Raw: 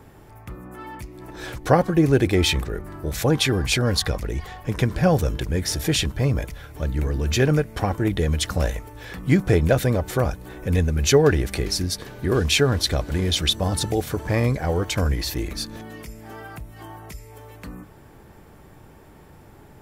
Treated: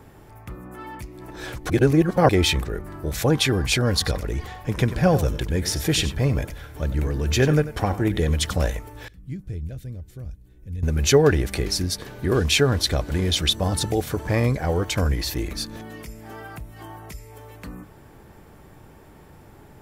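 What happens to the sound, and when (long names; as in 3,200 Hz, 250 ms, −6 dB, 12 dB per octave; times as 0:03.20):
0:01.70–0:02.29: reverse
0:03.91–0:08.57: single-tap delay 93 ms −13.5 dB
0:09.08–0:10.83: guitar amp tone stack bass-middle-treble 10-0-1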